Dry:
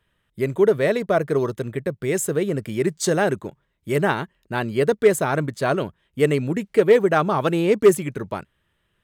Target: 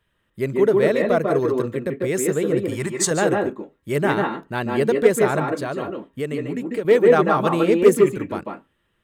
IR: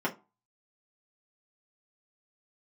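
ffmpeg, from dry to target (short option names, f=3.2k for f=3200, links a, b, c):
-filter_complex "[0:a]asettb=1/sr,asplit=3[a][b][c];[a]atrim=end=2.684[d];[b]atrim=start=2.68:end=3.11,asetpts=PTS-STARTPTS,afade=t=in:d=0.004:c=qsin,afade=t=out:st=0.426:d=0.004:c=qsin,equalizer=f=125:t=o:w=1:g=5,equalizer=f=250:t=o:w=1:g=-10,equalizer=f=500:t=o:w=1:g=-6,equalizer=f=1k:t=o:w=1:g=10,equalizer=f=8k:t=o:w=1:g=8[e];[c]atrim=start=3.106[f];[d][e]acrossfade=d=0.004:c1=hsin:c2=qsin[g];[g][f]acrossfade=d=0.004:c1=qsin:c2=hsin,asettb=1/sr,asplit=3[h][i][j];[h]atrim=end=5.444[k];[i]atrim=start=5.44:end=6.85,asetpts=PTS-STARTPTS,afade=t=in:d=0.004:c=qsin,afade=t=out:st=1.406:d=0.004:c=qsin,acompressor=threshold=-28dB:ratio=2[l];[j]atrim=start=6.846[m];[k][l]acrossfade=d=0.004:c1=hsin:c2=qsin[n];[n][m]acrossfade=d=0.004:c1=qsin:c2=hsin,asplit=2[o][p];[1:a]atrim=start_sample=2205,asetrate=57330,aresample=44100,adelay=143[q];[p][q]afir=irnorm=-1:irlink=0,volume=-9.5dB[r];[o][r]amix=inputs=2:normalize=0,volume=-1dB"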